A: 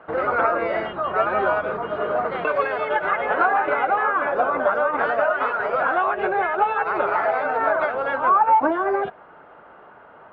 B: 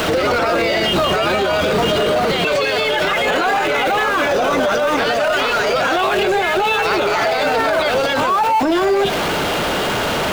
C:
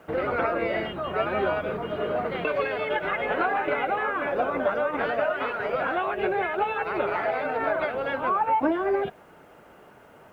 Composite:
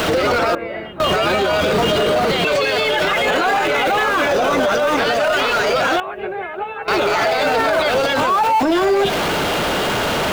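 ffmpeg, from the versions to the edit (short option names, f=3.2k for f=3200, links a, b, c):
-filter_complex "[2:a]asplit=2[a][b];[1:a]asplit=3[c][d][e];[c]atrim=end=0.552[f];[a]atrim=start=0.548:end=1.002[g];[d]atrim=start=0.998:end=6.002[h];[b]atrim=start=5.998:end=6.882[i];[e]atrim=start=6.878[j];[f][g]acrossfade=d=0.004:c1=hsin:c2=hsin[k];[k][h]acrossfade=d=0.004:c1=hsin:c2=hsin[l];[l][i]acrossfade=d=0.004:c1=hsin:c2=hsin[m];[m][j]acrossfade=d=0.004:c1=hsin:c2=hsin"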